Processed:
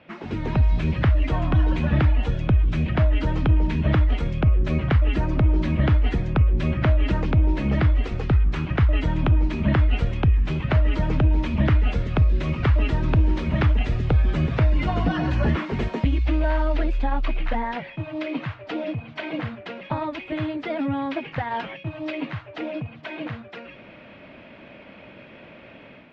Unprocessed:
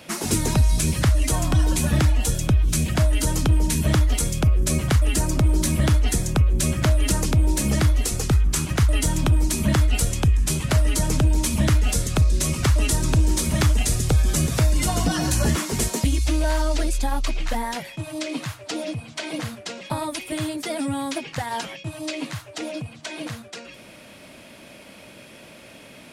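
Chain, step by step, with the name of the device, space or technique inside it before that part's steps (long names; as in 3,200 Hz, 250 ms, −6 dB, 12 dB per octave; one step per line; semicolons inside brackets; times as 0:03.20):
action camera in a waterproof case (low-pass filter 2,800 Hz 24 dB per octave; automatic gain control gain up to 8 dB; level −7 dB; AAC 64 kbit/s 44,100 Hz)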